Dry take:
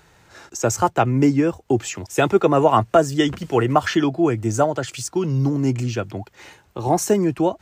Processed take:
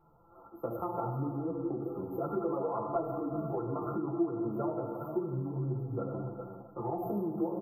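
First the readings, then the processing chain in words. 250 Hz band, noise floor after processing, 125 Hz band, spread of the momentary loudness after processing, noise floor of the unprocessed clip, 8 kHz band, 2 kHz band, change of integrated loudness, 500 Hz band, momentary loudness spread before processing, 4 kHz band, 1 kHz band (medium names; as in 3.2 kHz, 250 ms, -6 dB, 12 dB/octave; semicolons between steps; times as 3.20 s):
-14.0 dB, -58 dBFS, -14.5 dB, 7 LU, -55 dBFS, under -40 dB, under -30 dB, -15.5 dB, -15.0 dB, 9 LU, under -40 dB, -17.0 dB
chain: peak limiter -11.5 dBFS, peak gain reduction 9 dB; brick-wall FIR band-stop 1.4–12 kHz; treble shelf 7.7 kHz -9.5 dB; hum notches 50/100/150/200/250/300/350/400 Hz; comb 5.9 ms, depth 68%; delay 404 ms -12 dB; Schroeder reverb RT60 1.7 s, combs from 26 ms, DRR 3 dB; dynamic bell 400 Hz, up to +4 dB, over -30 dBFS, Q 2.9; compression, threshold -20 dBFS, peak gain reduction 11.5 dB; three-phase chorus; trim -7 dB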